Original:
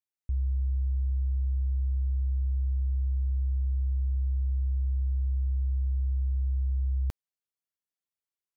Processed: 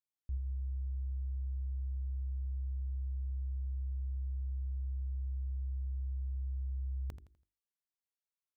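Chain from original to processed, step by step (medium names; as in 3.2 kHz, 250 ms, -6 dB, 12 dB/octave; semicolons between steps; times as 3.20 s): hum notches 50/100/150/200/250/300/350/400 Hz; feedback delay 83 ms, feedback 34%, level -11 dB; trim -7.5 dB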